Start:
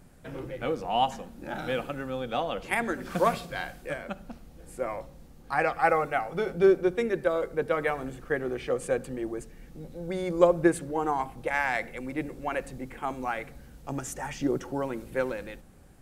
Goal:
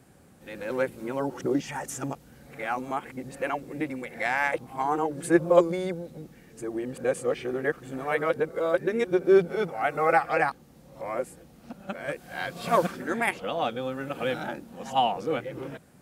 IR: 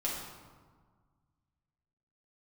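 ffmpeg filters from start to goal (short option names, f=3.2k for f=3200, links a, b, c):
-af "areverse,highpass=110,volume=1.5dB"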